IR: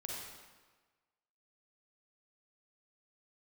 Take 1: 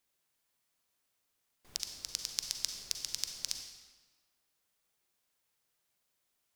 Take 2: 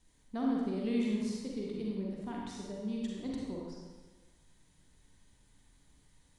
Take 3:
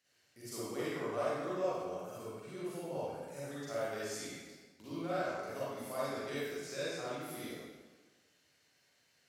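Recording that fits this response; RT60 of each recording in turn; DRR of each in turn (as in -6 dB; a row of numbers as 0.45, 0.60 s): 2; 1.3, 1.4, 1.4 s; 4.5, -3.0, -10.0 dB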